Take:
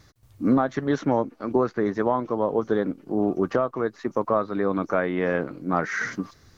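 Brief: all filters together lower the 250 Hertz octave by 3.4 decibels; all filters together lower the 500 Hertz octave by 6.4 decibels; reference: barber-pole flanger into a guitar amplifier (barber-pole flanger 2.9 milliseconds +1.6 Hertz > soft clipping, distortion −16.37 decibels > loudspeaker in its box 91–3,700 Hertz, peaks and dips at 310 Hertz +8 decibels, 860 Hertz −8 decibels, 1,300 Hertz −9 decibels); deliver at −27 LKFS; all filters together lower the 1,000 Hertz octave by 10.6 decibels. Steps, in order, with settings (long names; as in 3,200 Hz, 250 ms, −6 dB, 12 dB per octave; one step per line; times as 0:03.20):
parametric band 250 Hz −7.5 dB
parametric band 500 Hz −5.5 dB
parametric band 1,000 Hz −4 dB
barber-pole flanger 2.9 ms +1.6 Hz
soft clipping −25.5 dBFS
loudspeaker in its box 91–3,700 Hz, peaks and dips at 310 Hz +8 dB, 860 Hz −8 dB, 1,300 Hz −9 dB
level +8 dB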